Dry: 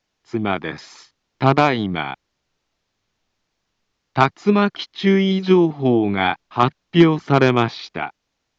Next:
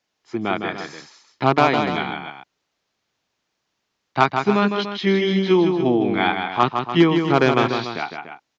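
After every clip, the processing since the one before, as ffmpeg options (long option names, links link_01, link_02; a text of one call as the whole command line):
ffmpeg -i in.wav -filter_complex "[0:a]highpass=frequency=210:poles=1,asplit=2[link_01][link_02];[link_02]aecho=0:1:157.4|291.5:0.501|0.282[link_03];[link_01][link_03]amix=inputs=2:normalize=0,volume=-1dB" out.wav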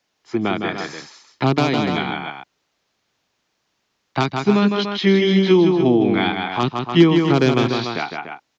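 ffmpeg -i in.wav -filter_complex "[0:a]acrossover=split=390|3000[link_01][link_02][link_03];[link_02]acompressor=threshold=-26dB:ratio=6[link_04];[link_01][link_04][link_03]amix=inputs=3:normalize=0,volume=4.5dB" out.wav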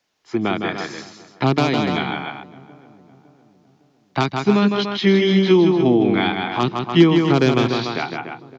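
ffmpeg -i in.wav -filter_complex "[0:a]asplit=2[link_01][link_02];[link_02]adelay=557,lowpass=frequency=1200:poles=1,volume=-20.5dB,asplit=2[link_03][link_04];[link_04]adelay=557,lowpass=frequency=1200:poles=1,volume=0.49,asplit=2[link_05][link_06];[link_06]adelay=557,lowpass=frequency=1200:poles=1,volume=0.49,asplit=2[link_07][link_08];[link_08]adelay=557,lowpass=frequency=1200:poles=1,volume=0.49[link_09];[link_01][link_03][link_05][link_07][link_09]amix=inputs=5:normalize=0" out.wav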